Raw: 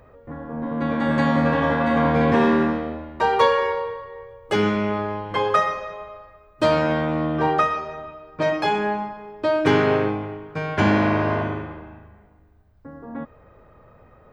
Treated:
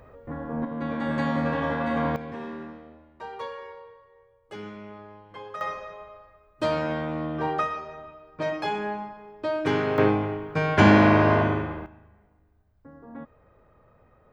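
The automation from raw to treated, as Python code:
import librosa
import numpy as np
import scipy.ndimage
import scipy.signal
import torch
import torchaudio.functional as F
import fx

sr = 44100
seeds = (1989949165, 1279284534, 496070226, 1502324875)

y = fx.gain(x, sr, db=fx.steps((0.0, 0.0), (0.65, -6.5), (2.16, -19.0), (5.61, -7.0), (9.98, 2.5), (11.86, -8.0)))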